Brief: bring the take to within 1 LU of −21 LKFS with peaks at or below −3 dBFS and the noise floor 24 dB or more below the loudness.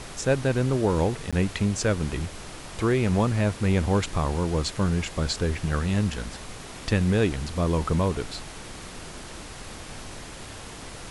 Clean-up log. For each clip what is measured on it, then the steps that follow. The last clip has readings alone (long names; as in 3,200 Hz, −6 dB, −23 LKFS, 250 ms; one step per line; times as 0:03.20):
number of dropouts 1; longest dropout 16 ms; background noise floor −41 dBFS; target noise floor −50 dBFS; integrated loudness −25.5 LKFS; sample peak −10.0 dBFS; target loudness −21.0 LKFS
→ repair the gap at 0:01.31, 16 ms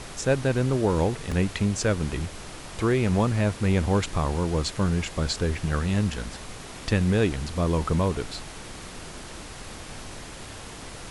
number of dropouts 0; background noise floor −41 dBFS; target noise floor −50 dBFS
→ noise reduction from a noise print 9 dB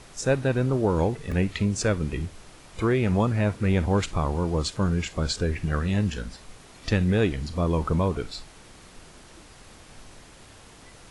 background noise floor −50 dBFS; integrated loudness −25.5 LKFS; sample peak −10.5 dBFS; target loudness −21.0 LKFS
→ level +4.5 dB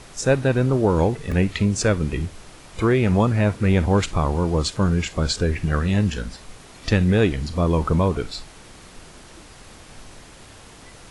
integrated loudness −21.0 LKFS; sample peak −6.0 dBFS; background noise floor −45 dBFS